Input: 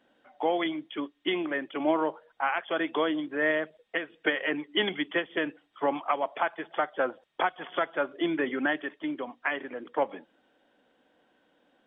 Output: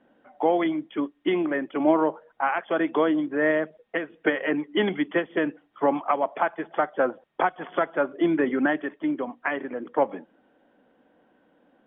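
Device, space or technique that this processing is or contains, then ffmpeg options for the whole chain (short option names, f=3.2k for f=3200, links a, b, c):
phone in a pocket: -af "lowpass=3k,equalizer=f=200:t=o:w=1:g=3.5,highshelf=f=2.2k:g=-10,volume=5.5dB"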